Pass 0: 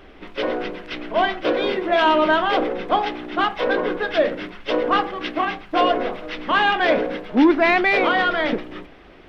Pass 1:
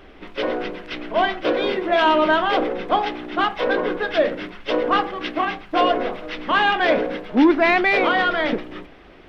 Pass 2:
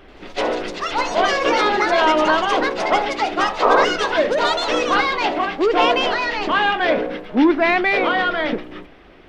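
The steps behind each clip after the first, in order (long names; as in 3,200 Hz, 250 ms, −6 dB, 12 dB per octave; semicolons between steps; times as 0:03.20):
no processing that can be heard
delay with pitch and tempo change per echo 85 ms, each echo +5 semitones, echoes 2; sound drawn into the spectrogram noise, 0:03.62–0:03.85, 380–1,300 Hz −15 dBFS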